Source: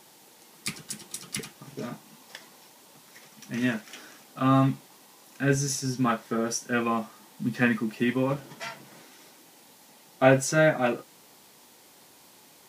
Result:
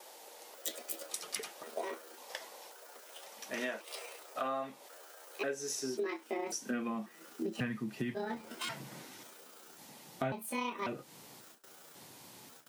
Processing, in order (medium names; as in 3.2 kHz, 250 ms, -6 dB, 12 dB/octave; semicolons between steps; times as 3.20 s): pitch shift switched off and on +8 st, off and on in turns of 543 ms; gate with hold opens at -45 dBFS; high-pass sweep 540 Hz -> 110 Hz, 5.36–7.69 s; compression 8:1, threshold -34 dBFS, peak gain reduction 21 dB